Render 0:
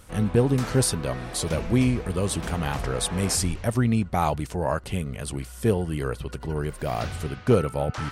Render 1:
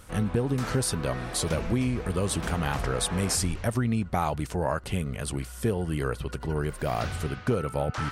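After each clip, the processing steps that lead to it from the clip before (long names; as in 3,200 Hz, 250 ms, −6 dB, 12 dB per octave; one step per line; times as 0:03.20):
parametric band 1,400 Hz +2.5 dB
downward compressor 6 to 1, threshold −22 dBFS, peak gain reduction 8.5 dB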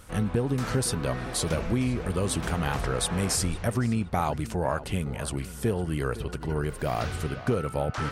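tape delay 511 ms, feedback 36%, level −13 dB, low-pass 2,400 Hz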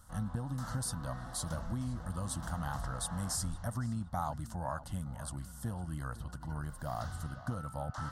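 phaser with its sweep stopped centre 1,000 Hz, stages 4
level −7.5 dB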